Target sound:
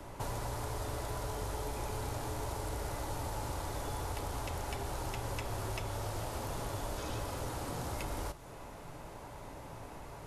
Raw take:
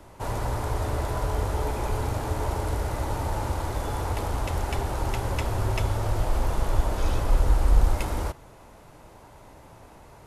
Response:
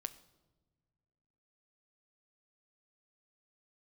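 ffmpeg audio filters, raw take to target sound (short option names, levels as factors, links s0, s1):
-filter_complex "[1:a]atrim=start_sample=2205,atrim=end_sample=3087[s0];[0:a][s0]afir=irnorm=-1:irlink=0,afftfilt=real='re*lt(hypot(re,im),0.501)':imag='im*lt(hypot(re,im),0.501)':win_size=1024:overlap=0.75,acrossover=split=300|3300[s1][s2][s3];[s1]acompressor=threshold=0.00631:ratio=4[s4];[s2]acompressor=threshold=0.00501:ratio=4[s5];[s3]acompressor=threshold=0.00251:ratio=4[s6];[s4][s5][s6]amix=inputs=3:normalize=0,volume=1.58"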